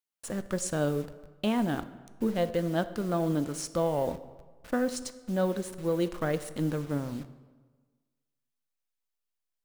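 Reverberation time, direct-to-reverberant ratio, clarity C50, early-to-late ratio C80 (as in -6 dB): 1.4 s, 12.0 dB, 14.5 dB, 16.0 dB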